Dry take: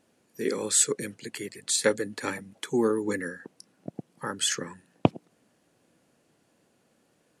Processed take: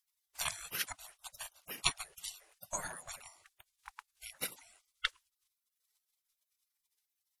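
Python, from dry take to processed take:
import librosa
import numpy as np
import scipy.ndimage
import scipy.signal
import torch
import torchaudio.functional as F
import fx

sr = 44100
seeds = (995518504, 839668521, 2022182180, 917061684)

y = fx.transient(x, sr, attack_db=12, sustain_db=0)
y = fx.spec_gate(y, sr, threshold_db=-30, keep='weak')
y = y * 10.0 ** (4.0 / 20.0)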